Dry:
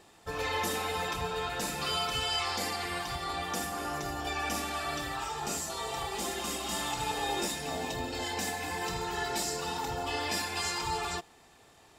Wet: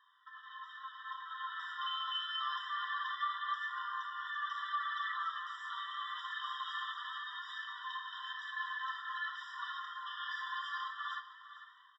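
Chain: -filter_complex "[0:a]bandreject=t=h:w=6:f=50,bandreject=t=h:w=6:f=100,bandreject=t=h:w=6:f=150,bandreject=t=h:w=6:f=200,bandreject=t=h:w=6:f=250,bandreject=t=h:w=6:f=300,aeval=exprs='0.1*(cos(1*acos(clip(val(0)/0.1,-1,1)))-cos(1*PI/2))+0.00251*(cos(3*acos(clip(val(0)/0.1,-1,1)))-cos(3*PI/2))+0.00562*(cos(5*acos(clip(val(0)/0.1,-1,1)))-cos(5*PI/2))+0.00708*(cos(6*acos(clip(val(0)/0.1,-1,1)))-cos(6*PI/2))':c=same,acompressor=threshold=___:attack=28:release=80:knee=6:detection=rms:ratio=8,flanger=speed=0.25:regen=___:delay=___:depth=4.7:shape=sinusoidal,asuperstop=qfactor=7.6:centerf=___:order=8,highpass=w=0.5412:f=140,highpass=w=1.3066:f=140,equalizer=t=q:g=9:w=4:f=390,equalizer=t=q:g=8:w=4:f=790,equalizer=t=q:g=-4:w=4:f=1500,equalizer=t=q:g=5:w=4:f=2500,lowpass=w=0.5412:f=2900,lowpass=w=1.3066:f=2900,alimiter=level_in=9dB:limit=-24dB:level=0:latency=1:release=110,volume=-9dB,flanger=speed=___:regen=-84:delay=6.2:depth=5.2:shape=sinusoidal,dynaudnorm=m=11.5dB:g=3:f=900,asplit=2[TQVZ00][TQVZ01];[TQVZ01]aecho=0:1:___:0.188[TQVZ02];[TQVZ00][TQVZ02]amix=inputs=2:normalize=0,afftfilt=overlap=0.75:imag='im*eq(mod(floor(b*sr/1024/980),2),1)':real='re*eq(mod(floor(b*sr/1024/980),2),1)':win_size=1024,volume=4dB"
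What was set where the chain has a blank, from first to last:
-39dB, 39, 1.9, 770, 0.82, 449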